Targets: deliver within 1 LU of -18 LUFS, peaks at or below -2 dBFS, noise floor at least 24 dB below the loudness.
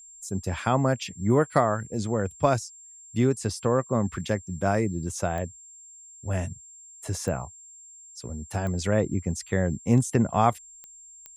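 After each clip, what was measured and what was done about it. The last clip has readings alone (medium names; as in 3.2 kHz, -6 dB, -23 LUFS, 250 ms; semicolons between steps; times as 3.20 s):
clicks found 5; steady tone 7.4 kHz; tone level -46 dBFS; loudness -26.5 LUFS; peak level -6.5 dBFS; loudness target -18.0 LUFS
-> de-click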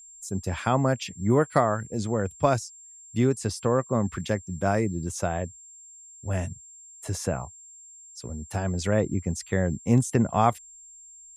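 clicks found 0; steady tone 7.4 kHz; tone level -46 dBFS
-> band-stop 7.4 kHz, Q 30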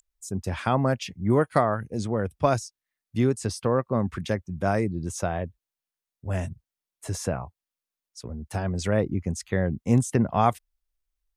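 steady tone not found; loudness -26.5 LUFS; peak level -6.0 dBFS; loudness target -18.0 LUFS
-> trim +8.5 dB; peak limiter -2 dBFS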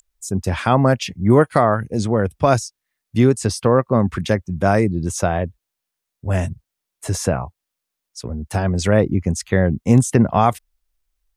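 loudness -18.5 LUFS; peak level -2.0 dBFS; noise floor -82 dBFS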